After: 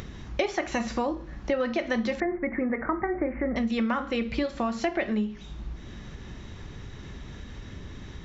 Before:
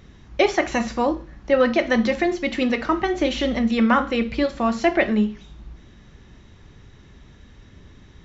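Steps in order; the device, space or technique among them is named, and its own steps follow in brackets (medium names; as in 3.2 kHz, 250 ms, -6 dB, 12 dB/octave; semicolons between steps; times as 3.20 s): upward and downward compression (upward compressor, threshold -37 dBFS; compression 4:1, threshold -29 dBFS, peak gain reduction 14 dB); 2.20–3.56 s: steep low-pass 2.2 kHz 96 dB/octave; trim +3 dB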